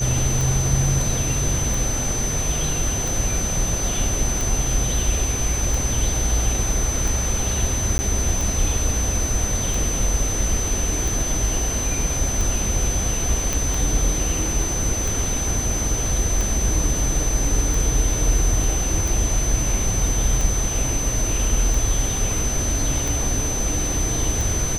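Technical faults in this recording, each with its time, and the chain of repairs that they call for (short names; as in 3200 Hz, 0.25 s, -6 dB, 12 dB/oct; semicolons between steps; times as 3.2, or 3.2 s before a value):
tick 45 rpm
tone 6100 Hz -25 dBFS
7.98–7.99 gap 10 ms
13.53 pop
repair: de-click; notch 6100 Hz, Q 30; interpolate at 7.98, 10 ms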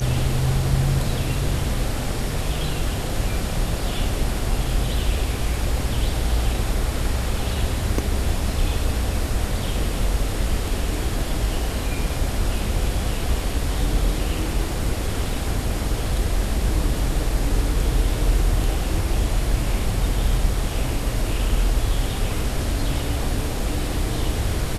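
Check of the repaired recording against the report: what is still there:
none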